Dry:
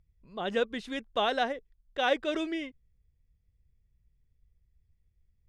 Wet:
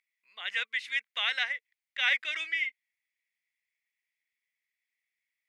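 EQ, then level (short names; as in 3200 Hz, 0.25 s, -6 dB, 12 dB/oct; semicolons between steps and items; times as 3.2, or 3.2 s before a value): resonant high-pass 2100 Hz, resonance Q 5.6; 0.0 dB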